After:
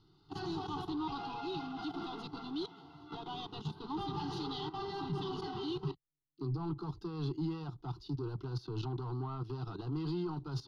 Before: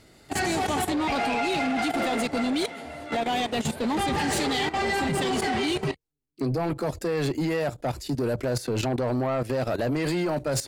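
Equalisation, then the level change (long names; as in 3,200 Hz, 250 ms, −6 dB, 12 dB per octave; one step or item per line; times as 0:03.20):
high-frequency loss of the air 160 metres
phaser with its sweep stopped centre 350 Hz, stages 8
phaser with its sweep stopped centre 2,300 Hz, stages 6
−5.5 dB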